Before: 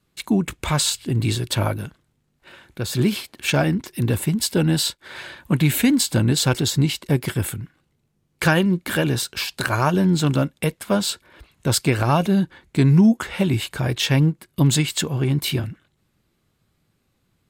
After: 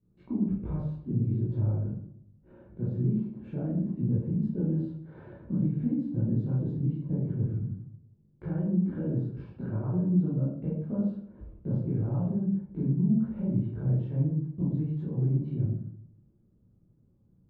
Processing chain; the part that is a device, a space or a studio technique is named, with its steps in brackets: television next door (compressor 4:1, threshold -31 dBFS, peak gain reduction 17 dB; LPF 320 Hz 12 dB/oct; reverb RT60 0.65 s, pre-delay 14 ms, DRR -8.5 dB); gain -4.5 dB

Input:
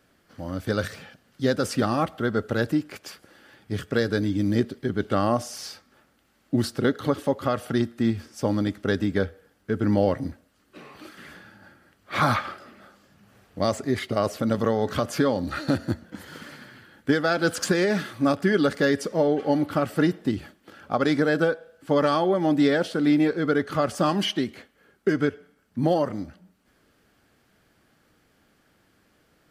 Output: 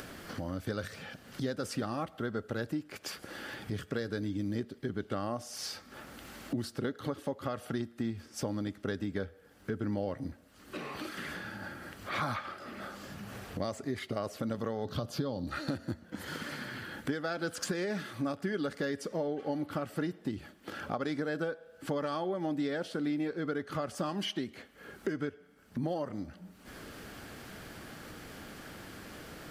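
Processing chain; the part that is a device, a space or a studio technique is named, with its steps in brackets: 14.85–15.47 graphic EQ 125/2000/4000/8000 Hz +7/-11/+7/-7 dB; upward and downward compression (upward compressor, threshold -32 dBFS; compressor 3:1, threshold -35 dBFS, peak gain reduction 14.5 dB)

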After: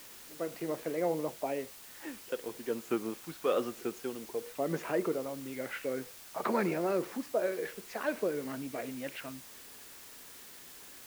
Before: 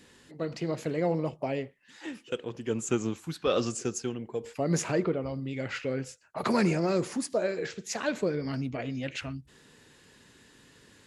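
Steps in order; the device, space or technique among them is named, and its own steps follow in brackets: wax cylinder (BPF 290–2200 Hz; wow and flutter; white noise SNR 15 dB); gain -2 dB

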